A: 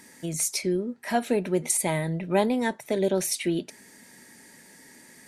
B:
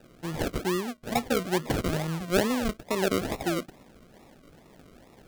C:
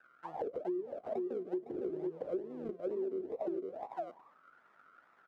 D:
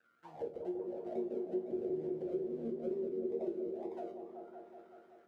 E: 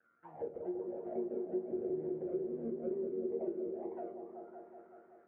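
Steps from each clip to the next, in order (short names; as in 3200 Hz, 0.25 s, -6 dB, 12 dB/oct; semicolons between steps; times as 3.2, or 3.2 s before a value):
decimation with a swept rate 40×, swing 60% 2.3 Hz; gain -2 dB
echo 0.508 s -5 dB; auto-wah 370–1500 Hz, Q 11, down, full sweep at -23.5 dBFS; compressor 10:1, threshold -42 dBFS, peak gain reduction 18 dB; gain +8 dB
bell 1100 Hz -12 dB 1.7 oct; resonator bank D#2 minor, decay 0.28 s; repeats that get brighter 0.188 s, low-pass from 400 Hz, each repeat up 1 oct, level -3 dB; gain +11 dB
LPF 1900 Hz 24 dB/oct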